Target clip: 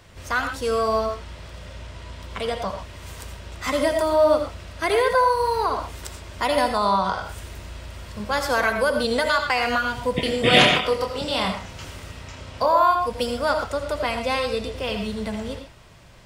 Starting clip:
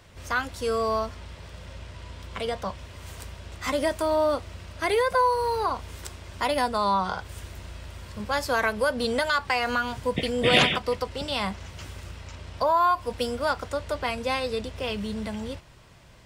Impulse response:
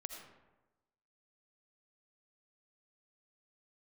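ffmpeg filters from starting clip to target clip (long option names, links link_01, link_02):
-filter_complex "[0:a]asettb=1/sr,asplit=3[link_01][link_02][link_03];[link_01]atrim=end=10.204[link_04];[link_02]atrim=start=10.2:end=12.68,asetpts=PTS-STARTPTS,afade=type=in:duration=0.004:curve=qsin,afade=type=out:start_time=2.476:duration=0.004:curve=qsin,asplit=2[link_05][link_06];[link_06]adelay=27,volume=-5.5dB[link_07];[link_05][link_07]amix=inputs=2:normalize=0,atrim=end_sample=109368[link_08];[link_03]atrim=start=12.676[link_09];[link_04][link_08]acrossfade=duration=0.004:curve1=hsin:curve2=qsin[link_10];[link_10][link_09]acrossfade=duration=0.004:curve1=qsin:curve2=hsin[link_11];[1:a]atrim=start_sample=2205,afade=type=out:start_time=0.19:duration=0.01,atrim=end_sample=8820[link_12];[link_11][link_12]afir=irnorm=-1:irlink=0,volume=7dB"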